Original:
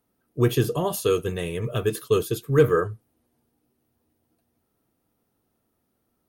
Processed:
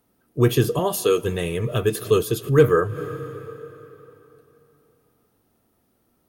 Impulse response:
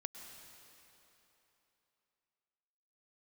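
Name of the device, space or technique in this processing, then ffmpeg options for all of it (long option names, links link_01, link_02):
ducked reverb: -filter_complex "[0:a]asplit=3[link_01][link_02][link_03];[1:a]atrim=start_sample=2205[link_04];[link_02][link_04]afir=irnorm=-1:irlink=0[link_05];[link_03]apad=whole_len=277285[link_06];[link_05][link_06]sidechaincompress=threshold=-39dB:ratio=6:attack=5.1:release=104,volume=-0.5dB[link_07];[link_01][link_07]amix=inputs=2:normalize=0,asettb=1/sr,asplit=3[link_08][link_09][link_10];[link_08]atrim=end=0.794[link_11];[link_09]atrim=start=0.79:end=1.22,asetpts=PTS-STARTPTS,afade=type=in:duration=0.004:curve=qsin,afade=type=out:start_time=0.426:duration=0.004:curve=qsin,highpass=190[link_12];[link_10]atrim=start=1.216[link_13];[link_11][link_12]acrossfade=duration=0.004:curve1=hsin:curve2=qsin[link_14];[link_14][link_13]acrossfade=duration=0.004:curve1=qsin:curve2=hsin,volume=2.5dB"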